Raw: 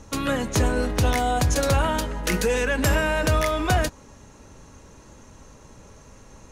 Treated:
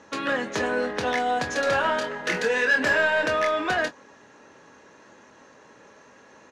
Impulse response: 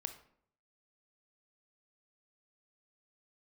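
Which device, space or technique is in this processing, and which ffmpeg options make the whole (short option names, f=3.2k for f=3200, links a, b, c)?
intercom: -filter_complex "[0:a]highpass=310,lowpass=4.2k,equalizer=f=1.7k:t=o:w=0.27:g=8.5,asoftclip=type=tanh:threshold=-16.5dB,asplit=2[a][b];[b]adelay=24,volume=-9dB[c];[a][c]amix=inputs=2:normalize=0,asettb=1/sr,asplit=3[d][e][f];[d]atrim=end=1.644[g];[e]atrim=start=1.64:end=3.26,asetpts=PTS-STARTPTS,afade=t=in:d=0.004:c=qsin,afade=t=out:st=1.616:d=0.004:c=qsin,asplit=2[h][i];[i]adelay=27,volume=-5dB[j];[h][j]amix=inputs=2:normalize=0,atrim=end_sample=71442[k];[f]atrim=start=3.256[l];[g][k]acrossfade=d=0.004:c1=hsin:c2=qsin[m];[m][l]acrossfade=d=0.004:c1=qsin:c2=hsin"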